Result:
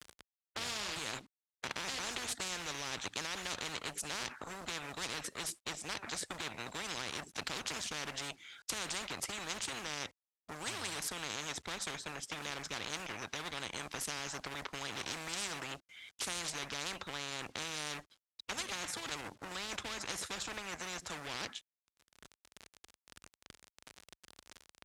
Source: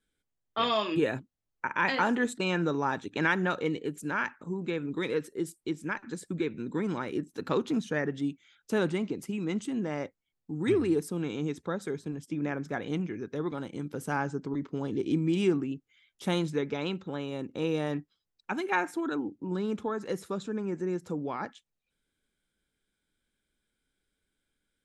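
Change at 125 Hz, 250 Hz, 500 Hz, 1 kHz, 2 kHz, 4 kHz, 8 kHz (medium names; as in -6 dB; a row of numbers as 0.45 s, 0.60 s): -16.0 dB, -19.5 dB, -16.0 dB, -9.0 dB, -6.5 dB, +2.5 dB, +9.5 dB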